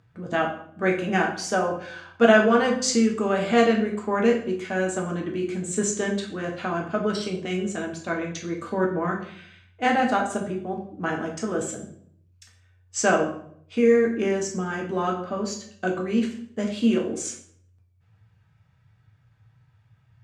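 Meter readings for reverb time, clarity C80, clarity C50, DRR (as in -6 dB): 0.60 s, 11.0 dB, 7.5 dB, -0.5 dB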